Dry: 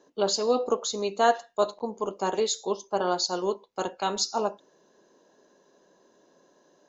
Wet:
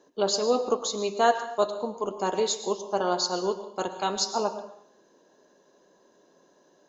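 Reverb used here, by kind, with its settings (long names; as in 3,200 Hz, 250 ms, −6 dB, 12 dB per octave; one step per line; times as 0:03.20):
dense smooth reverb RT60 0.66 s, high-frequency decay 0.9×, pre-delay 95 ms, DRR 10.5 dB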